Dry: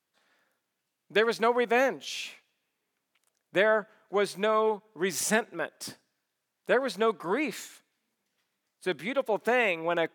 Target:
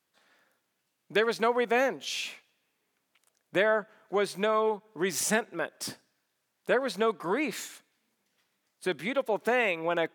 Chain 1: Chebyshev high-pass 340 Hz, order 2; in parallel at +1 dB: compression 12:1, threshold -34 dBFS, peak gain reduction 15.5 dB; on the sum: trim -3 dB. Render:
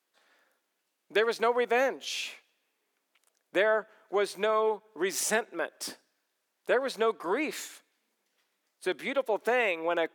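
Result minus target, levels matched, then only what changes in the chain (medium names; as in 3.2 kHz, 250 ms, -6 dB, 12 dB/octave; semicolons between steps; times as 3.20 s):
250 Hz band -2.5 dB
remove: Chebyshev high-pass 340 Hz, order 2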